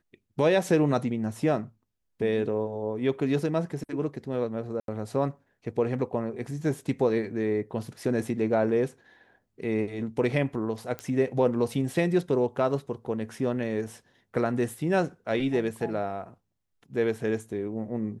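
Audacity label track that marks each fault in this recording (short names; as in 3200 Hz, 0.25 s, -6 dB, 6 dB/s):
4.800000	4.880000	gap 82 ms
10.990000	10.990000	pop -19 dBFS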